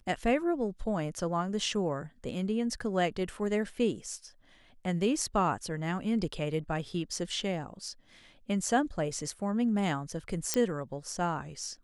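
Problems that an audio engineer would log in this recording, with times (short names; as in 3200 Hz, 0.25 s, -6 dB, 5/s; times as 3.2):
10.54 pop -11 dBFS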